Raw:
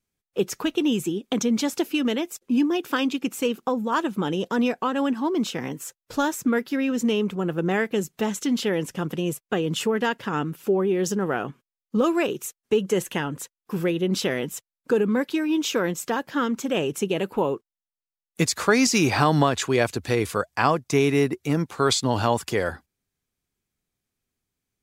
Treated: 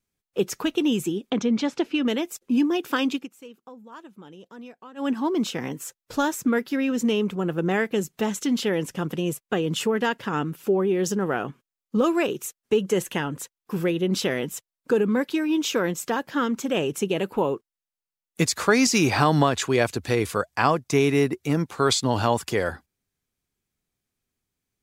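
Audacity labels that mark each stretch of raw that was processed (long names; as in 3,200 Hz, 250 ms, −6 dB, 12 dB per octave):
1.300000	2.080000	low-pass filter 3,900 Hz
3.150000	5.090000	duck −19.5 dB, fades 0.13 s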